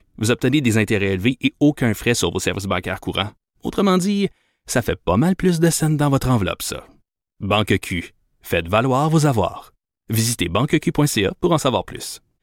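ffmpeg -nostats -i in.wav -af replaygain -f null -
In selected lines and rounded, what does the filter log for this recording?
track_gain = -0.2 dB
track_peak = 0.433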